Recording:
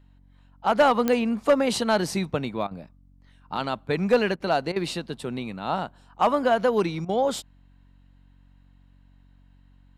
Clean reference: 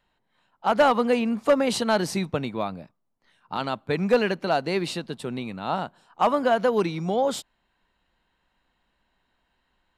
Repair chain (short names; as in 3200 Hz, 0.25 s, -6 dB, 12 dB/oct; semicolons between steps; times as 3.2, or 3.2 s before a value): de-click; de-hum 46.5 Hz, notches 6; interpolate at 2.67/4.36/4.72/7.05, 40 ms